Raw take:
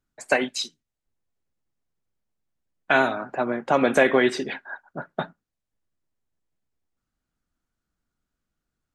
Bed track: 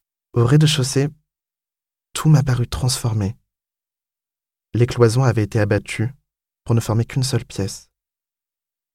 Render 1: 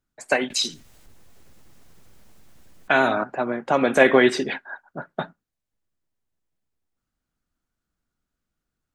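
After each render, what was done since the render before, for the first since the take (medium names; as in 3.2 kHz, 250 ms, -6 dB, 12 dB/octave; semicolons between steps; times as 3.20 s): 0.50–3.24 s: level flattener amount 50%; 4.00–4.58 s: gain +3.5 dB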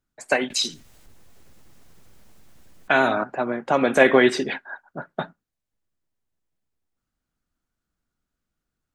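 no audible change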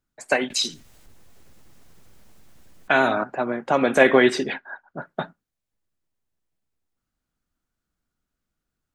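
4.52–4.99 s: distance through air 110 m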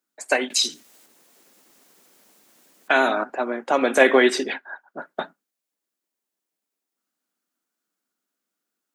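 high-pass 240 Hz 24 dB/octave; treble shelf 5.6 kHz +7 dB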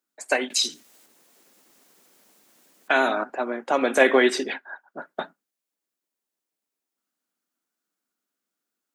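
trim -2 dB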